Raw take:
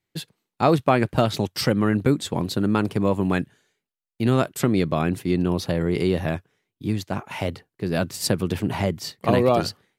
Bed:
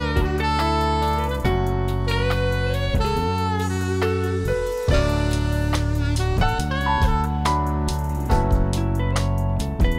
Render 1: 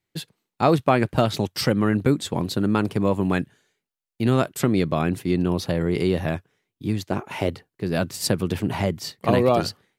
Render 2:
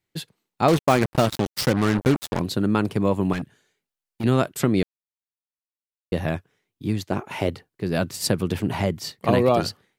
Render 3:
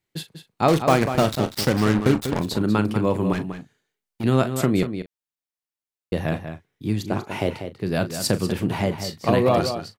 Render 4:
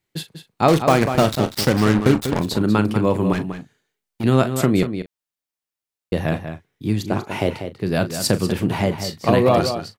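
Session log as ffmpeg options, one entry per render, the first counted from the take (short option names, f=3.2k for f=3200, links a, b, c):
-filter_complex "[0:a]asettb=1/sr,asplit=3[a][b][c];[a]atrim=end=7.094[d];[b]atrim=start=7.09:end=7.49,asetpts=PTS-STARTPTS,afade=t=in:d=0.004:c=qsin,afade=t=out:st=0.396:d=0.004:c=qsin,equalizer=f=370:t=o:w=0.83:g=8[e];[c]atrim=start=7.486[f];[d][e]acrossfade=d=0.004:c1=hsin:c2=qsin[g];[g][f]acrossfade=d=0.004:c1=qsin:c2=hsin"
-filter_complex "[0:a]asettb=1/sr,asplit=3[a][b][c];[a]atrim=end=0.684[d];[b]atrim=start=0.68:end=2.4,asetpts=PTS-STARTPTS,afade=t=in:d=0.004:c=qsin,afade=t=out:st=1.716:d=0.004:c=qsin,acrusher=bits=3:mix=0:aa=0.5[e];[c]atrim=start=2.396[f];[d][e]acrossfade=d=0.004:c1=hsin:c2=qsin[g];[g][f]acrossfade=d=0.004:c1=qsin:c2=hsin,asettb=1/sr,asplit=3[h][i][j];[h]atrim=end=3.334[k];[i]atrim=start=3.33:end=4.24,asetpts=PTS-STARTPTS,afade=t=in:d=0.004:c=qsin,afade=t=out:st=0.906:d=0.004:c=qsin,volume=24dB,asoftclip=hard,volume=-24dB[l];[j]atrim=start=4.236[m];[k][l]acrossfade=d=0.004:c1=hsin:c2=qsin[n];[n][m]acrossfade=d=0.004:c1=qsin:c2=hsin,asplit=3[o][p][q];[o]atrim=end=4.83,asetpts=PTS-STARTPTS,afade=t=out:st=4.826:d=0.004:c=hsin[r];[p]atrim=start=4.83:end=6.12,asetpts=PTS-STARTPTS,volume=0[s];[q]atrim=start=6.12,asetpts=PTS-STARTPTS,afade=t=in:d=0.004:c=hsin[t];[r][s][t]concat=n=3:v=0:a=1"
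-filter_complex "[0:a]asplit=2[a][b];[b]adelay=38,volume=-12.5dB[c];[a][c]amix=inputs=2:normalize=0,asplit=2[d][e];[e]adelay=192.4,volume=-9dB,highshelf=f=4k:g=-4.33[f];[d][f]amix=inputs=2:normalize=0"
-af "volume=3dB,alimiter=limit=-1dB:level=0:latency=1"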